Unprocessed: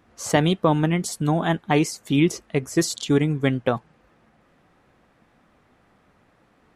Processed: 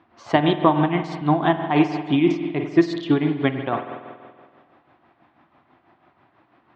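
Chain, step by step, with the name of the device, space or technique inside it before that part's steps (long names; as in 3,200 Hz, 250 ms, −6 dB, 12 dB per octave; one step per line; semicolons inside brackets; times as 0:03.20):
combo amplifier with spring reverb and tremolo (spring reverb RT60 1.8 s, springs 47 ms, chirp 55 ms, DRR 6 dB; amplitude tremolo 6.1 Hz, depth 56%; loudspeaker in its box 110–3,900 Hz, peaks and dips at 190 Hz −7 dB, 340 Hz +6 dB, 480 Hz −9 dB, 700 Hz +5 dB, 1,000 Hz +6 dB)
level +2 dB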